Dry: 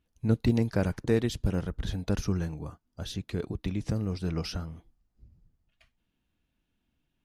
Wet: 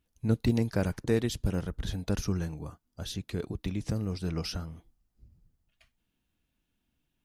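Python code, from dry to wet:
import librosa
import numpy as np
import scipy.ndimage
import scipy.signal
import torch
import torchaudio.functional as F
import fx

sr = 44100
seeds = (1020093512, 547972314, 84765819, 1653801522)

y = fx.high_shelf(x, sr, hz=5700.0, db=6.5)
y = F.gain(torch.from_numpy(y), -1.5).numpy()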